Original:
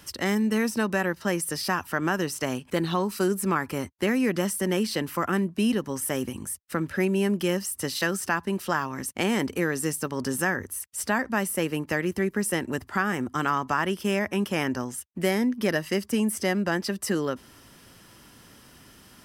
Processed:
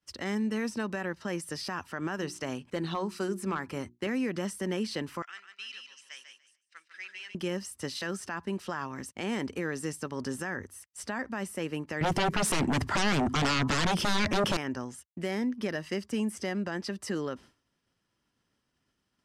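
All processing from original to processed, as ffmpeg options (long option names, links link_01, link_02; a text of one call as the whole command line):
ffmpeg -i in.wav -filter_complex "[0:a]asettb=1/sr,asplit=3[link_01][link_02][link_03];[link_01]atrim=end=2.154[link_04];[link_02]atrim=start=2.15:end=4.07,asetpts=PTS-STARTPTS,afade=type=in:duration=0.004:curve=qsin,afade=type=out:start_time=1.916:duration=0.004:curve=qsin,asoftclip=type=hard:threshold=-15dB,bandreject=frequency=60:width_type=h:width=6,bandreject=frequency=120:width_type=h:width=6,bandreject=frequency=180:width_type=h:width=6,bandreject=frequency=240:width_type=h:width=6,bandreject=frequency=300:width_type=h:width=6,bandreject=frequency=360:width_type=h:width=6[link_05];[link_03]atrim=start=4.066[link_06];[link_04][link_05]acrossfade=duration=0.004:curve1=hsin:curve2=qsin[link_07];[link_07][link_06]acrossfade=duration=0.004:curve1=qsin:curve2=hsin,asettb=1/sr,asplit=3[link_08][link_09][link_10];[link_08]atrim=end=5.224[link_11];[link_09]atrim=start=5.22:end=7.35,asetpts=PTS-STARTPTS,afade=type=in:duration=0.004:curve=qsin,afade=type=out:start_time=2.126:duration=0.004:curve=qsin,asuperpass=centerf=3600:order=4:qfactor=0.91,aecho=1:1:147|294|441|588|735|882:0.562|0.259|0.119|0.0547|0.0252|0.0116,atrim=end_sample=93933[link_12];[link_10]atrim=start=7.346[link_13];[link_11][link_12]acrossfade=duration=0.004:curve1=hsin:curve2=qsin[link_14];[link_14][link_13]acrossfade=duration=0.004:curve1=qsin:curve2=hsin,asettb=1/sr,asplit=3[link_15][link_16][link_17];[link_15]atrim=end=12.014[link_18];[link_16]atrim=start=12.01:end=14.57,asetpts=PTS-STARTPTS,afade=type=in:duration=0.004:curve=qsin,afade=type=out:start_time=2.556:duration=0.004:curve=qsin,equalizer=frequency=150:width=1.4:gain=7.5,aeval=exprs='0.355*sin(PI/2*7.08*val(0)/0.355)':channel_layout=same[link_19];[link_17]atrim=start=14.566[link_20];[link_18][link_19]acrossfade=duration=0.004:curve1=hsin:curve2=qsin[link_21];[link_21][link_20]acrossfade=duration=0.004:curve1=qsin:curve2=hsin,lowpass=7200,agate=range=-33dB:threshold=-39dB:ratio=3:detection=peak,alimiter=limit=-17dB:level=0:latency=1:release=41,volume=-5.5dB" out.wav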